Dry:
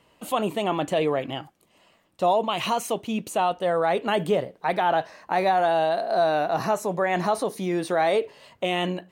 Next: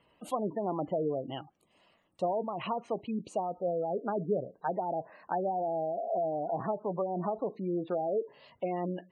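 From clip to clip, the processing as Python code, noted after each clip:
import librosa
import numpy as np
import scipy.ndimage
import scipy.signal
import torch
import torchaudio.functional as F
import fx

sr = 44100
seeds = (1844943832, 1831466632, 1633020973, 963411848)

y = fx.env_lowpass_down(x, sr, base_hz=610.0, full_db=-19.0)
y = fx.spec_gate(y, sr, threshold_db=-20, keep='strong')
y = y * 10.0 ** (-6.5 / 20.0)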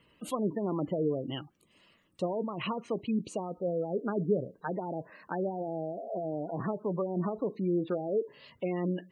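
y = fx.peak_eq(x, sr, hz=750.0, db=-13.5, octaves=0.78)
y = y * 10.0 ** (5.0 / 20.0)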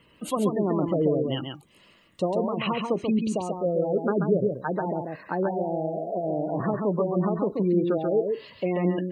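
y = x + 10.0 ** (-4.5 / 20.0) * np.pad(x, (int(136 * sr / 1000.0), 0))[:len(x)]
y = y * 10.0 ** (6.0 / 20.0)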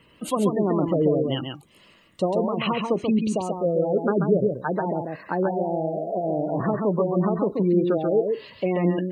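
y = fx.wow_flutter(x, sr, seeds[0], rate_hz=2.1, depth_cents=29.0)
y = y * 10.0 ** (2.5 / 20.0)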